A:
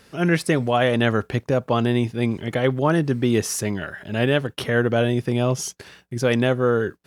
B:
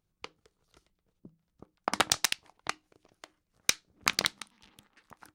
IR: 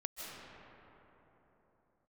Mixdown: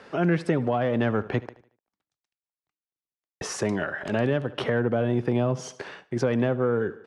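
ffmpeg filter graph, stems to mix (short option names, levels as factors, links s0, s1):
-filter_complex "[0:a]acontrast=87,bandpass=f=750:t=q:w=0.7:csg=0,volume=1.26,asplit=3[s0][s1][s2];[s0]atrim=end=1.49,asetpts=PTS-STARTPTS,afade=t=out:st=1.486:d=0.004:c=hsin[s3];[s1]atrim=start=1.49:end=3.41,asetpts=PTS-STARTPTS,volume=0[s4];[s2]atrim=start=3.41,asetpts=PTS-STARTPTS,afade=t=in:d=0.004:c=hsin[s5];[s3][s4][s5]concat=n=3:v=0:a=1,asplit=3[s6][s7][s8];[s7]volume=0.1[s9];[1:a]bass=f=250:g=6,treble=f=4000:g=-1,acompressor=threshold=0.0251:ratio=4,asoftclip=type=tanh:threshold=0.0447,volume=0.631[s10];[s8]apad=whole_len=235544[s11];[s10][s11]sidechaingate=range=0.00891:threshold=0.00501:ratio=16:detection=peak[s12];[s9]aecho=0:1:75|150|225|300|375:1|0.39|0.152|0.0593|0.0231[s13];[s6][s12][s13]amix=inputs=3:normalize=0,acrossover=split=220[s14][s15];[s15]acompressor=threshold=0.0562:ratio=6[s16];[s14][s16]amix=inputs=2:normalize=0,lowpass=f=10000:w=0.5412,lowpass=f=10000:w=1.3066"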